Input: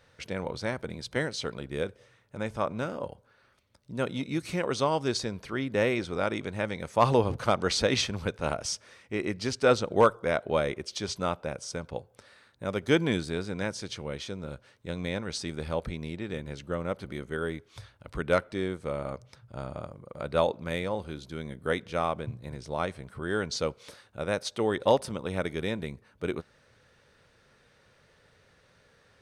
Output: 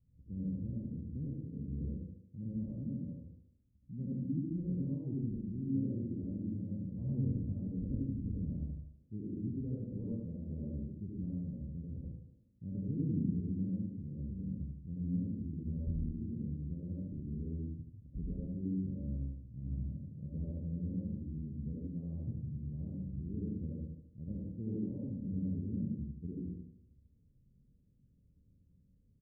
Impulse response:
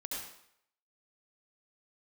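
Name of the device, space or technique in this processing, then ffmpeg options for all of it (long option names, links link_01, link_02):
club heard from the street: -filter_complex "[0:a]equalizer=frequency=810:width_type=o:width=0.77:gain=-3,alimiter=limit=-16.5dB:level=0:latency=1:release=239,lowpass=frequency=220:width=0.5412,lowpass=frequency=220:width=1.3066[link_01];[1:a]atrim=start_sample=2205[link_02];[link_01][link_02]afir=irnorm=-1:irlink=0,aecho=1:1:74|148|222|296|370:0.501|0.195|0.0762|0.0297|0.0116,volume=1.5dB"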